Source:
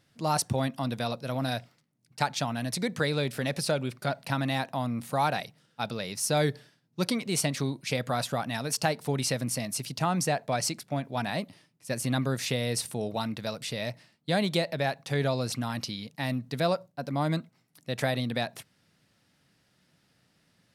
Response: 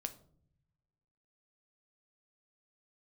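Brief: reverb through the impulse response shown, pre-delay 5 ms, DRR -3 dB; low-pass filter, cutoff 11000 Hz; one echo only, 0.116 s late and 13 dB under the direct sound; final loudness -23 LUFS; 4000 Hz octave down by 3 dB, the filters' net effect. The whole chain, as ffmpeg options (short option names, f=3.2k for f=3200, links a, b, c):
-filter_complex "[0:a]lowpass=11k,equalizer=f=4k:t=o:g=-3.5,aecho=1:1:116:0.224,asplit=2[a][b];[1:a]atrim=start_sample=2205,adelay=5[c];[b][c]afir=irnorm=-1:irlink=0,volume=5dB[d];[a][d]amix=inputs=2:normalize=0,volume=2dB"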